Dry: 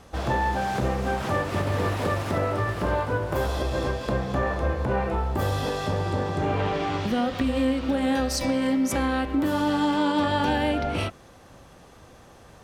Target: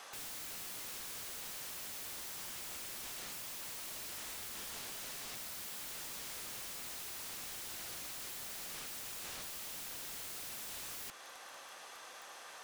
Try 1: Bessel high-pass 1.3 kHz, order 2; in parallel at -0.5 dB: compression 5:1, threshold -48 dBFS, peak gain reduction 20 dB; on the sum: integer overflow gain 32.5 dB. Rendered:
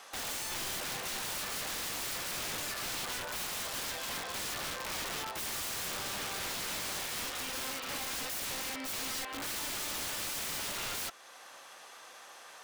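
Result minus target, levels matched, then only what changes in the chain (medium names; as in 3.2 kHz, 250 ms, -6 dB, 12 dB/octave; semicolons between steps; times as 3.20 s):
integer overflow: distortion -25 dB; compression: peak gain reduction +6 dB
change: compression 5:1, threshold -40.5 dBFS, peak gain reduction 14 dB; change: integer overflow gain 40.5 dB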